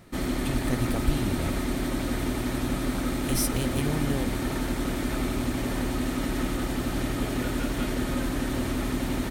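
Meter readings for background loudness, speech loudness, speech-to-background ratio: −29.0 LKFS, −32.5 LKFS, −3.5 dB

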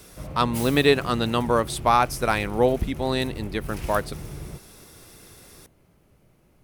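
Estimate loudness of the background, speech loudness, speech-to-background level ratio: −37.0 LKFS, −23.5 LKFS, 13.5 dB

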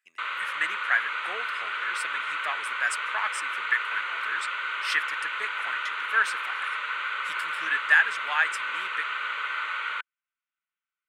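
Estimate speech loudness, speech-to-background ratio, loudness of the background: −29.0 LKFS, 1.0 dB, −30.0 LKFS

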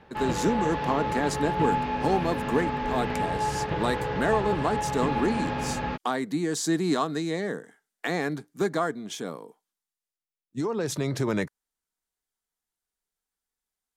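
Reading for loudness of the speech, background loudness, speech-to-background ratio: −29.0 LKFS, −29.5 LKFS, 0.5 dB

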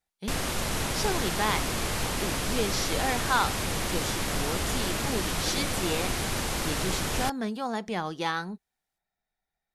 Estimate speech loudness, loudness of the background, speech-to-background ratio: −32.5 LKFS, −29.5 LKFS, −3.0 dB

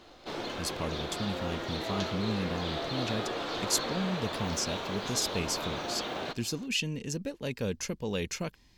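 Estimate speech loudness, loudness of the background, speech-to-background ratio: −34.5 LKFS, −35.5 LKFS, 1.0 dB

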